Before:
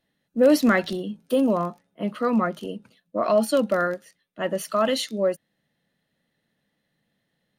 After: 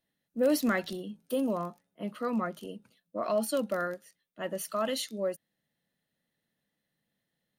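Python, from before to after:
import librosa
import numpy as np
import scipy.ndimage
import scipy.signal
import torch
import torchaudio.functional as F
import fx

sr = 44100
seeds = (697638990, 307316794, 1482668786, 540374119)

y = fx.high_shelf(x, sr, hz=7900.0, db=10.0)
y = y * 10.0 ** (-9.0 / 20.0)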